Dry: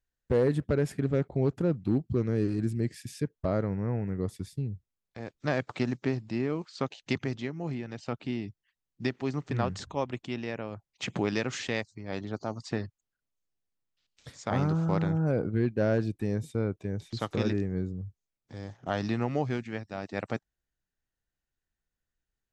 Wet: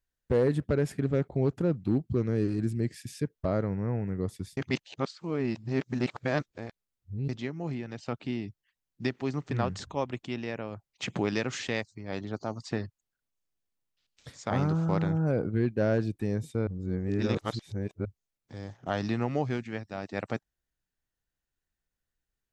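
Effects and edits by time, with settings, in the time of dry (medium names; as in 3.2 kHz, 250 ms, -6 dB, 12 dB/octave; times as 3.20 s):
4.57–7.29 s: reverse
16.67–18.05 s: reverse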